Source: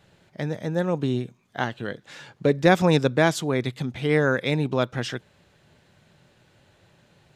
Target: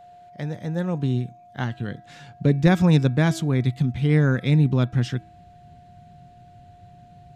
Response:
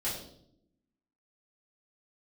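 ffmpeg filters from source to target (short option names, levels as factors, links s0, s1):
-af "bandreject=f=326.5:t=h:w=4,bandreject=f=653:t=h:w=4,bandreject=f=979.5:t=h:w=4,bandreject=f=1306:t=h:w=4,bandreject=f=1632.5:t=h:w=4,bandreject=f=1959:t=h:w=4,bandreject=f=2285.5:t=h:w=4,bandreject=f=2612:t=h:w=4,aeval=exprs='val(0)+0.00891*sin(2*PI*710*n/s)':c=same,asubboost=boost=8:cutoff=220,volume=0.668"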